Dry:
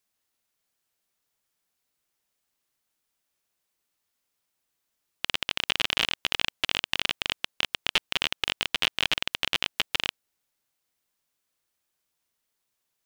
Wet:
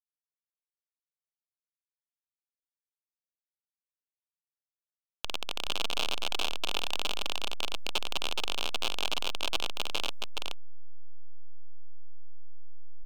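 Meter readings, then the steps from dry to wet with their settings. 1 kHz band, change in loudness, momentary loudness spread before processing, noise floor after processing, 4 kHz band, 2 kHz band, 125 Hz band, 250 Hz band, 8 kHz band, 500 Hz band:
-1.5 dB, -6.0 dB, 5 LU, under -85 dBFS, -5.5 dB, -8.5 dB, -1.5 dB, -4.0 dB, -1.5 dB, 0.0 dB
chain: static phaser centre 810 Hz, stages 4; hysteresis with a dead band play -26 dBFS; on a send: delay 422 ms -3 dB; on the sum: trim -1 dB

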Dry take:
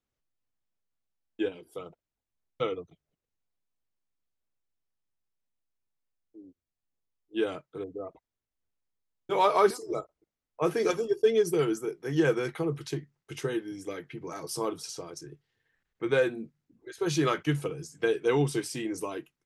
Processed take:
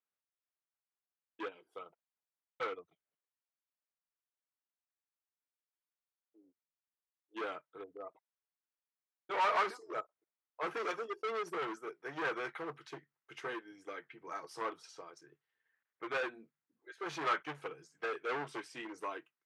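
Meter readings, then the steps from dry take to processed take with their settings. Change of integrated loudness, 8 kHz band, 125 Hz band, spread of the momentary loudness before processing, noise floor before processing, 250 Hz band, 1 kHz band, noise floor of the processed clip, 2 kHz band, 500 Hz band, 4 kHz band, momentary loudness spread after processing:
-9.5 dB, -17.0 dB, -24.5 dB, 16 LU, under -85 dBFS, -17.0 dB, -4.5 dB, under -85 dBFS, -3.5 dB, -14.0 dB, -9.0 dB, 17 LU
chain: hard clipper -29.5 dBFS, distortion -5 dB; band-pass filter 1.4 kHz, Q 1; upward expansion 1.5:1, over -51 dBFS; trim +5 dB

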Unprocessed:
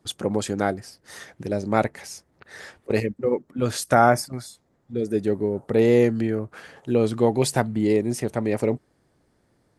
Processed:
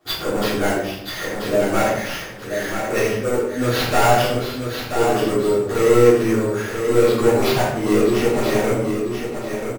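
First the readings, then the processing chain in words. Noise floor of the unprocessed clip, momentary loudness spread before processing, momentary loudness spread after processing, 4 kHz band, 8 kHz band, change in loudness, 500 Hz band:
-67 dBFS, 21 LU, 11 LU, +9.5 dB, +4.5 dB, +4.0 dB, +5.5 dB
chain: bass shelf 64 Hz +8.5 dB; overdrive pedal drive 26 dB, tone 5.2 kHz, clips at -3 dBFS; sample-rate reducer 8.2 kHz, jitter 0%; on a send: feedback delay 983 ms, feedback 23%, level -6.5 dB; on the sum: simulated room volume 190 m³, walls mixed, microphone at 3.4 m; trim -16.5 dB

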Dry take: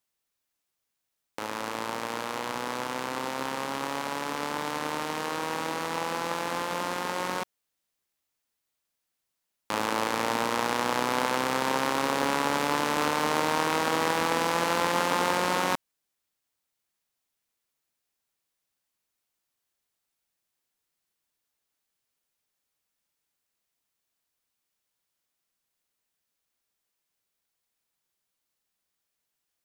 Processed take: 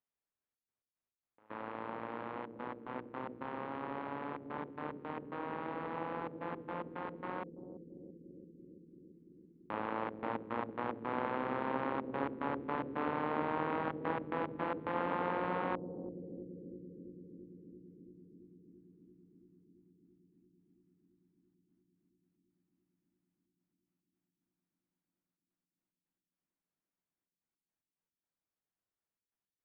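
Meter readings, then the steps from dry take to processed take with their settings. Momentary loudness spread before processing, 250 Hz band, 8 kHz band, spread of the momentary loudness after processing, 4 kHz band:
7 LU, -7.0 dB, under -40 dB, 19 LU, -24.5 dB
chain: Gaussian low-pass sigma 3.9 samples; trance gate "xxxx.x.x.x.xxx" 110 bpm -24 dB; bucket-brigade echo 336 ms, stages 1024, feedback 82%, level -5 dB; trim -8 dB

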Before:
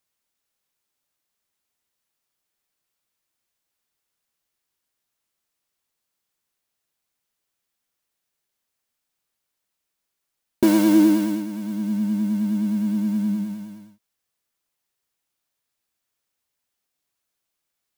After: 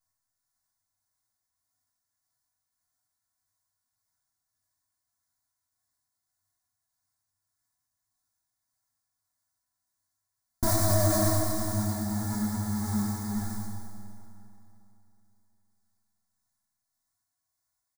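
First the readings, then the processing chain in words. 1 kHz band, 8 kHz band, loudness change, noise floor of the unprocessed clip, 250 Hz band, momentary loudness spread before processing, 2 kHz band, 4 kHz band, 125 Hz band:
+1.5 dB, +6.5 dB, -7.0 dB, -81 dBFS, -12.5 dB, 13 LU, -3.5 dB, -0.5 dB, no reading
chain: comb filter that takes the minimum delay 8.2 ms; treble shelf 2.6 kHz +10 dB; chorus 1.1 Hz, delay 20 ms, depth 6.1 ms; tremolo 1.7 Hz, depth 36%; static phaser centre 1.1 kHz, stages 4; comb 2.9 ms, depth 55%; Schroeder reverb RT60 3.1 s, combs from 31 ms, DRR 3.5 dB; peak limiter -18.5 dBFS, peak gain reduction 9 dB; graphic EQ with 31 bands 100 Hz +10 dB, 400 Hz -12 dB, 1.25 kHz -7 dB, 3.15 kHz -9 dB, 16 kHz -12 dB; tape noise reduction on one side only decoder only; trim +5 dB

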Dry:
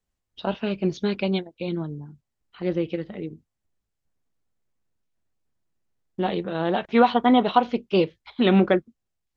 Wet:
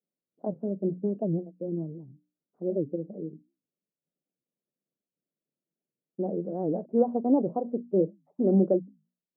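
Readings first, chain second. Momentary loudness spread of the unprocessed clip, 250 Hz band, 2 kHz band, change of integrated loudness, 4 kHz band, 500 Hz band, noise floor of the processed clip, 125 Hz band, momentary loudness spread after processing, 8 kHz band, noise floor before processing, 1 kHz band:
14 LU, -4.5 dB, under -40 dB, -5.5 dB, under -40 dB, -4.0 dB, under -85 dBFS, -4.0 dB, 14 LU, no reading, -82 dBFS, -14.5 dB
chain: elliptic band-pass 160–600 Hz, stop band 80 dB; hum notches 60/120/180/240/300 Hz; warped record 78 rpm, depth 250 cents; trim -3 dB

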